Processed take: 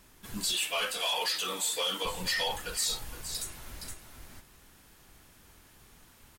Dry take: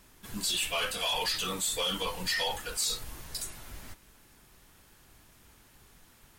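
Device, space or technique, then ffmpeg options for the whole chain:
ducked delay: -filter_complex "[0:a]asettb=1/sr,asplit=3[s0][s1][s2];[s0]atrim=end=0.534[s3];[s1]atrim=start=0.53:end=2.05,asetpts=PTS-STARTPTS,afade=t=in:d=0.004:c=qsin,afade=t=out:st=1.516:d=0.004:c=qsin,highpass=300[s4];[s2]atrim=start=2.046[s5];[s3][s4]acrossfade=d=0.004:c1=hsin:c2=qsin[s6];[s6][s5]acrossfade=d=0.004:c1=qsin:c2=hsin,asplit=3[s7][s8][s9];[s8]adelay=467,volume=0.596[s10];[s9]apad=whole_len=302013[s11];[s10][s11]sidechaincompress=threshold=0.00794:ratio=8:attack=36:release=533[s12];[s7][s12]amix=inputs=2:normalize=0"

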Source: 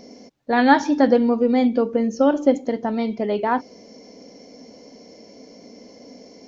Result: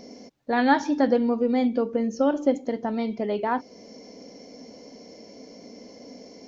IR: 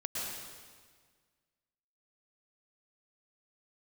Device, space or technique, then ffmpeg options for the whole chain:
parallel compression: -filter_complex "[0:a]asplit=2[s0][s1];[s1]acompressor=threshold=0.0282:ratio=6,volume=0.841[s2];[s0][s2]amix=inputs=2:normalize=0,volume=0.501"

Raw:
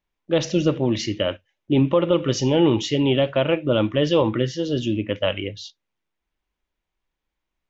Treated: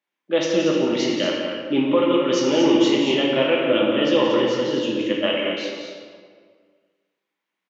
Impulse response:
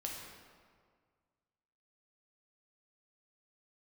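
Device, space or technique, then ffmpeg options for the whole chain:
stadium PA: -filter_complex "[0:a]highpass=f=190:w=0.5412,highpass=f=190:w=1.3066,equalizer=f=2000:t=o:w=1.4:g=5.5,aecho=1:1:174.9|230.3:0.316|0.398[s0];[1:a]atrim=start_sample=2205[s1];[s0][s1]afir=irnorm=-1:irlink=0"

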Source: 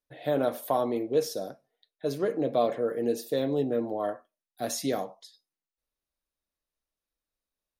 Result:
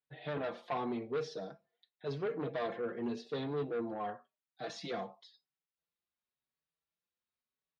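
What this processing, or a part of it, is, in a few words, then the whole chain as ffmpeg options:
barber-pole flanger into a guitar amplifier: -filter_complex "[0:a]asplit=2[s0][s1];[s1]adelay=4.9,afreqshift=0.93[s2];[s0][s2]amix=inputs=2:normalize=1,asoftclip=type=tanh:threshold=0.0422,highpass=100,equalizer=f=160:t=q:w=4:g=4,equalizer=f=290:t=q:w=4:g=-8,equalizer=f=570:t=q:w=4:g=-8,lowpass=f=4300:w=0.5412,lowpass=f=4300:w=1.3066"

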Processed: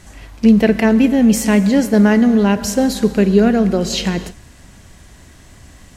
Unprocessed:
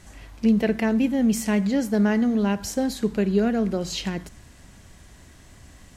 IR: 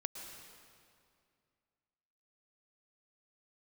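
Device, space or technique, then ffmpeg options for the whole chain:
keyed gated reverb: -filter_complex "[0:a]asplit=3[s0][s1][s2];[1:a]atrim=start_sample=2205[s3];[s1][s3]afir=irnorm=-1:irlink=0[s4];[s2]apad=whole_len=262975[s5];[s4][s5]sidechaingate=range=0.0224:threshold=0.0112:ratio=16:detection=peak,volume=0.562[s6];[s0][s6]amix=inputs=2:normalize=0,volume=2"

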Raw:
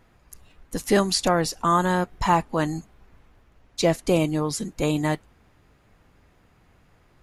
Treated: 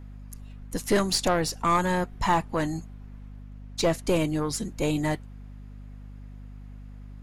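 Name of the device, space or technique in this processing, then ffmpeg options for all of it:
valve amplifier with mains hum: -af "aeval=exprs='(tanh(5.01*val(0)+0.4)-tanh(0.4))/5.01':c=same,aeval=exprs='val(0)+0.00891*(sin(2*PI*50*n/s)+sin(2*PI*2*50*n/s)/2+sin(2*PI*3*50*n/s)/3+sin(2*PI*4*50*n/s)/4+sin(2*PI*5*50*n/s)/5)':c=same"

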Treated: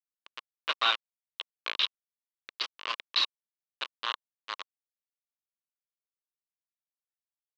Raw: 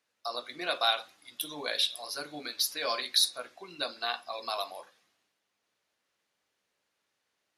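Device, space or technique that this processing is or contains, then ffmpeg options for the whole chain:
hand-held game console: -af "acrusher=bits=3:mix=0:aa=0.000001,highpass=490,equalizer=f=730:t=q:w=4:g=-9,equalizer=f=1100:t=q:w=4:g=9,equalizer=f=2900:t=q:w=4:g=8,lowpass=f=4000:w=0.5412,lowpass=f=4000:w=1.3066"

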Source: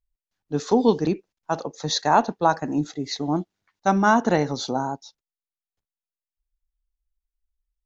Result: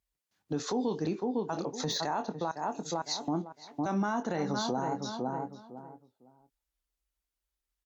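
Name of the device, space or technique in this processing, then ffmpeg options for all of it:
podcast mastering chain: -filter_complex "[0:a]asplit=2[s0][s1];[s1]adelay=24,volume=0.282[s2];[s0][s2]amix=inputs=2:normalize=0,asettb=1/sr,asplit=3[s3][s4][s5];[s3]atrim=end=2.514[s6];[s4]atrim=start=2.51:end=3.28,asetpts=PTS-STARTPTS,afade=t=in:d=0.004:c=qsin,afade=t=out:st=0.766:d=0.004:c=qsin,aderivative[s7];[s5]atrim=start=3.276[s8];[s6][s7]acrossfade=d=0.004:c1=hsin:c2=qsin[s9];[s9][s8]acrossfade=d=0.004:c1=qsin:c2=hsin,highpass=89,asplit=2[s10][s11];[s11]adelay=505,lowpass=f=1300:p=1,volume=0.282,asplit=2[s12][s13];[s13]adelay=505,lowpass=f=1300:p=1,volume=0.21,asplit=2[s14][s15];[s15]adelay=505,lowpass=f=1300:p=1,volume=0.21[s16];[s10][s12][s14][s16]amix=inputs=4:normalize=0,deesser=0.65,acompressor=threshold=0.02:ratio=3,alimiter=level_in=1.5:limit=0.0631:level=0:latency=1:release=39,volume=0.668,volume=1.88" -ar 44100 -c:a libmp3lame -b:a 96k

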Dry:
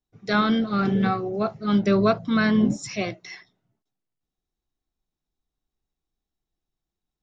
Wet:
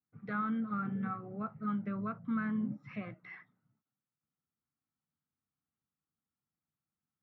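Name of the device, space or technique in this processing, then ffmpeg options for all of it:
bass amplifier: -af "acompressor=threshold=0.0251:ratio=4,highpass=f=86:w=0.5412,highpass=f=86:w=1.3066,equalizer=f=91:t=q:w=4:g=4,equalizer=f=150:t=q:w=4:g=6,equalizer=f=230:t=q:w=4:g=6,equalizer=f=380:t=q:w=4:g=-9,equalizer=f=670:t=q:w=4:g=-7,equalizer=f=1300:t=q:w=4:g=9,lowpass=f=2200:w=0.5412,lowpass=f=2200:w=1.3066,volume=0.473"

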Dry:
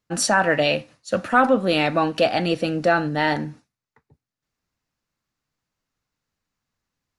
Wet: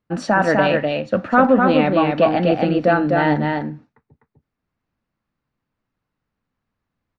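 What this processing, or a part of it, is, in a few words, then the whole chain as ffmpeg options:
phone in a pocket: -filter_complex "[0:a]lowpass=3900,equalizer=f=230:t=o:w=0.77:g=3,highshelf=f=2400:g=-10,aecho=1:1:251:0.668,asettb=1/sr,asplit=3[s0][s1][s2];[s0]atrim=end=1.774[s3];[s1]atrim=start=1.77:end=2.52,asetpts=PTS-STARTPTS,afade=t=in:d=0.004:c=qsin,afade=t=out:st=0.746:d=0.004:c=qsin,acrossover=split=4500[s4][s5];[s5]acompressor=threshold=0.00251:ratio=4:attack=1:release=60[s6];[s4][s6]amix=inputs=2:normalize=0[s7];[s2]atrim=start=2.516[s8];[s3][s7]acrossfade=d=0.004:c1=hsin:c2=qsin[s9];[s9][s8]acrossfade=d=0.004:c1=qsin:c2=hsin,volume=1.41"

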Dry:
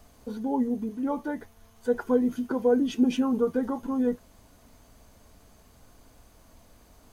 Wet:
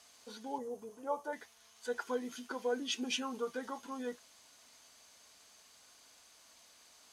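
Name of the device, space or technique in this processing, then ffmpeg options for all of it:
piezo pickup straight into a mixer: -filter_complex "[0:a]lowpass=5200,aderivative,asettb=1/sr,asplit=3[s0][s1][s2];[s0]atrim=end=0.584[s3];[s1]atrim=start=0.58:end=1.33,asetpts=PTS-STARTPTS,afade=t=in:d=0.004:c=qsin,afade=t=out:st=0.746:d=0.004:c=qsin,equalizer=f=125:t=o:w=1:g=8,equalizer=f=250:t=o:w=1:g=-9,equalizer=f=500:t=o:w=1:g=9,equalizer=f=1000:t=o:w=1:g=4,equalizer=f=2000:t=o:w=1:g=-10,equalizer=f=4000:t=o:w=1:g=-10[s4];[s2]atrim=start=1.326[s5];[s3][s4]acrossfade=d=0.004:c1=hsin:c2=qsin[s6];[s6][s5]acrossfade=d=0.004:c1=qsin:c2=hsin,volume=3.55"

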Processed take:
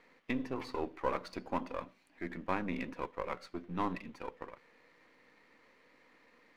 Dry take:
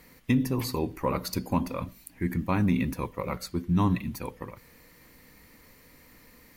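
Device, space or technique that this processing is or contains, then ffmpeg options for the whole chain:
crystal radio: -af "highpass=360,lowpass=2700,aeval=exprs='if(lt(val(0),0),0.447*val(0),val(0))':c=same,volume=0.794"

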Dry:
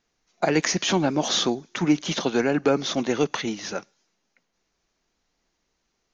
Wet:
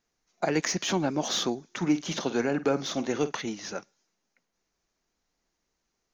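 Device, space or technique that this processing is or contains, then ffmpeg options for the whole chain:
exciter from parts: -filter_complex "[0:a]asettb=1/sr,asplit=3[s0][s1][s2];[s0]atrim=end=1.774[s3];[s1]atrim=start=1.77:end=3.33,asetpts=PTS-STARTPTS,afade=t=in:d=0.004:c=qsin,afade=t=out:st=1.556:d=0.004:c=qsin,asplit=2[s4][s5];[s5]adelay=50,volume=0.2[s6];[s4][s6]amix=inputs=2:normalize=0,atrim=end_sample=68796[s7];[s2]atrim=start=3.326[s8];[s3][s7]acrossfade=d=0.004:c1=hsin:c2=qsin[s9];[s9][s8]acrossfade=d=0.004:c1=qsin:c2=hsin,asplit=2[s10][s11];[s11]highpass=3500,asoftclip=type=tanh:threshold=0.0447,highpass=2100,volume=0.447[s12];[s10][s12]amix=inputs=2:normalize=0,volume=0.562"

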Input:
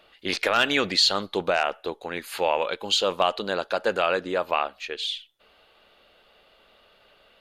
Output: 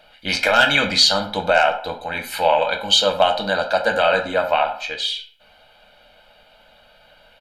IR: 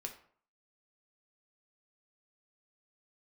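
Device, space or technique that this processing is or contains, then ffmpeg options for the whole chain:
microphone above a desk: -filter_complex "[0:a]aecho=1:1:1.3:0.89[s0];[1:a]atrim=start_sample=2205[s1];[s0][s1]afir=irnorm=-1:irlink=0,volume=2.24"

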